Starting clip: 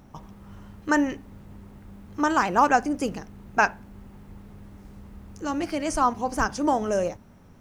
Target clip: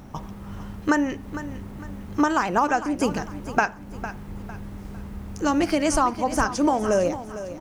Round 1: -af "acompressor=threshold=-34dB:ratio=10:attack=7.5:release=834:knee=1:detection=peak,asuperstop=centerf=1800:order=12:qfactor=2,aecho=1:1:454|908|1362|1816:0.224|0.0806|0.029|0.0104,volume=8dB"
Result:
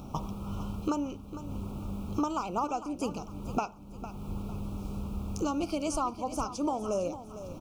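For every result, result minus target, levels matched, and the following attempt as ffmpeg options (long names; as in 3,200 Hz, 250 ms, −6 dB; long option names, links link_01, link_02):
2,000 Hz band −11.0 dB; downward compressor: peak gain reduction +10 dB
-af "acompressor=threshold=-34dB:ratio=10:attack=7.5:release=834:knee=1:detection=peak,aecho=1:1:454|908|1362|1816:0.224|0.0806|0.029|0.0104,volume=8dB"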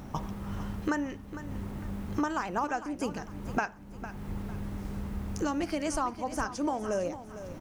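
downward compressor: peak gain reduction +10 dB
-af "acompressor=threshold=-23dB:ratio=10:attack=7.5:release=834:knee=1:detection=peak,aecho=1:1:454|908|1362|1816:0.224|0.0806|0.029|0.0104,volume=8dB"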